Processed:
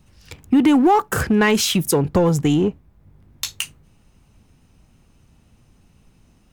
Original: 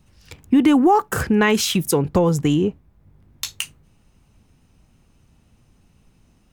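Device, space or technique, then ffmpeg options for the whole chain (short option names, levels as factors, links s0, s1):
parallel distortion: -filter_complex "[0:a]asplit=2[s0][s1];[s1]asoftclip=type=hard:threshold=0.126,volume=0.596[s2];[s0][s2]amix=inputs=2:normalize=0,volume=0.794"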